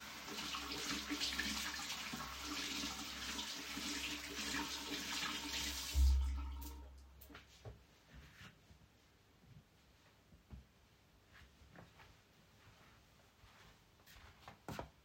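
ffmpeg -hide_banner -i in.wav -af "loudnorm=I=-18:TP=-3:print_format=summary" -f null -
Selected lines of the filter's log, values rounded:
Input Integrated:    -42.0 LUFS
Input True Peak:     -24.9 dBTP
Input LRA:            22.4 LU
Input Threshold:     -55.8 LUFS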